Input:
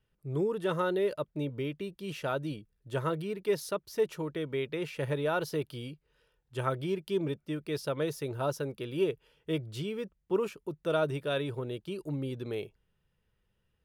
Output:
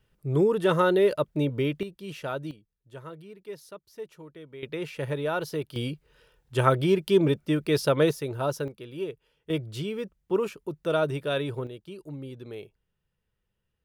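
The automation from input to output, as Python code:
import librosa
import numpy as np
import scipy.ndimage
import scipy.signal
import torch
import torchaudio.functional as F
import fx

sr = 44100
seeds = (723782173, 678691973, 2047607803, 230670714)

y = fx.gain(x, sr, db=fx.steps((0.0, 8.0), (1.83, 0.0), (2.51, -10.5), (4.63, 1.5), (5.76, 10.0), (8.11, 3.5), (8.68, -4.0), (9.5, 3.5), (11.67, -4.0)))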